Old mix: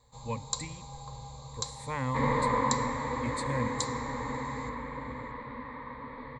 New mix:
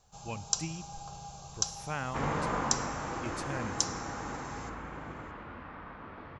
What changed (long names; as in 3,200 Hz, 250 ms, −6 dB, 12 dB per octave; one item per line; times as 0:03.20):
first sound: add high-shelf EQ 6,300 Hz +10 dB
master: remove EQ curve with evenly spaced ripples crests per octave 1, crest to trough 18 dB